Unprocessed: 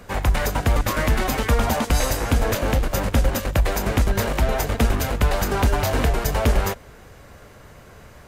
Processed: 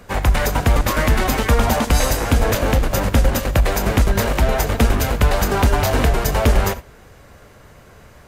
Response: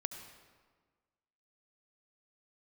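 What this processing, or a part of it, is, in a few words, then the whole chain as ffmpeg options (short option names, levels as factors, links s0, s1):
keyed gated reverb: -filter_complex "[0:a]asplit=3[s0][s1][s2];[1:a]atrim=start_sample=2205[s3];[s1][s3]afir=irnorm=-1:irlink=0[s4];[s2]apad=whole_len=365141[s5];[s4][s5]sidechaingate=range=0.0224:threshold=0.0282:ratio=16:detection=peak,volume=0.631[s6];[s0][s6]amix=inputs=2:normalize=0"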